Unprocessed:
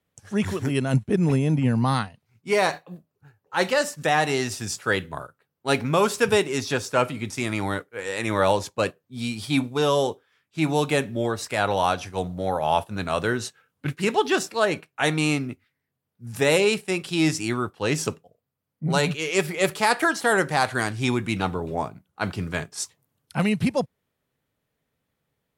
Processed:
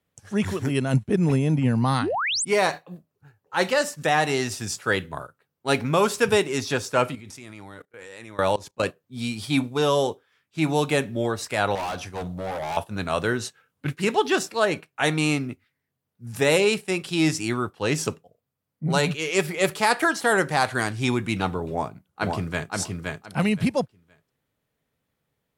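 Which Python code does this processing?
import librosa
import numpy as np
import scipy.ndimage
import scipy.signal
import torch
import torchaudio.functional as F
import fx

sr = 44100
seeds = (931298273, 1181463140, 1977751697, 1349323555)

y = fx.spec_paint(x, sr, seeds[0], shape='rise', start_s=2.01, length_s=0.44, low_hz=220.0, high_hz=10000.0, level_db=-25.0)
y = fx.level_steps(y, sr, step_db=21, at=(7.15, 8.83))
y = fx.overload_stage(y, sr, gain_db=27.0, at=(11.75, 12.77))
y = fx.echo_throw(y, sr, start_s=21.69, length_s=1.04, ms=520, feedback_pct=20, wet_db=-3.0)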